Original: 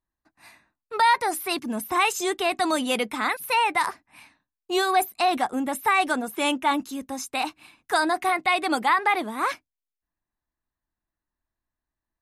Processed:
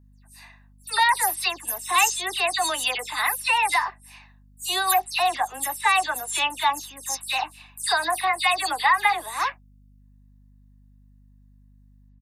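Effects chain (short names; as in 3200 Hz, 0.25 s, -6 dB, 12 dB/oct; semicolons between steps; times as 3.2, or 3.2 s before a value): spectral delay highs early, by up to 0.124 s; Bessel high-pass 640 Hz, order 8; high shelf 3500 Hz +7.5 dB; comb 1.1 ms, depth 46%; hum 50 Hz, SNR 28 dB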